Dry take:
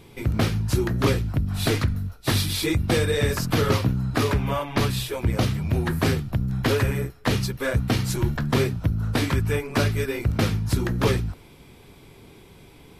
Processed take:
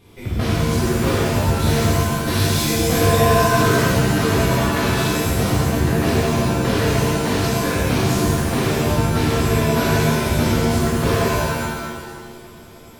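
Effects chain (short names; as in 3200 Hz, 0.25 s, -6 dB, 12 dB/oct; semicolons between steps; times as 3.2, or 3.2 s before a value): shimmer reverb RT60 1.6 s, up +7 st, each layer -2 dB, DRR -7.5 dB; gain -6 dB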